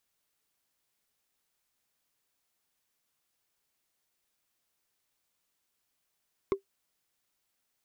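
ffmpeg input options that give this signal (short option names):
-f lavfi -i "aevalsrc='0.112*pow(10,-3*t/0.11)*sin(2*PI*392*t)+0.0501*pow(10,-3*t/0.033)*sin(2*PI*1080.7*t)+0.0224*pow(10,-3*t/0.015)*sin(2*PI*2118.4*t)+0.01*pow(10,-3*t/0.008)*sin(2*PI*3501.7*t)+0.00447*pow(10,-3*t/0.005)*sin(2*PI*5229.3*t)':d=0.45:s=44100"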